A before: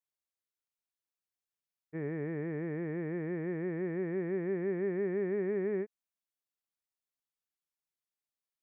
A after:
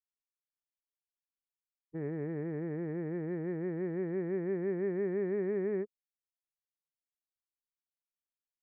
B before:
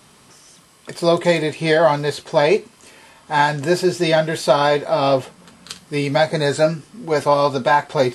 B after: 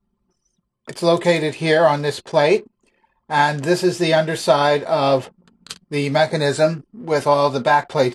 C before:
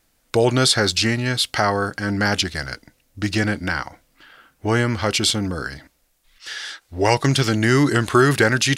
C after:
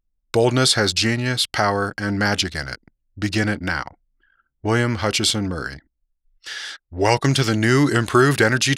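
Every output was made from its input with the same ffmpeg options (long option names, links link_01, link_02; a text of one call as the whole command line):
ffmpeg -i in.wav -af "anlmdn=1" out.wav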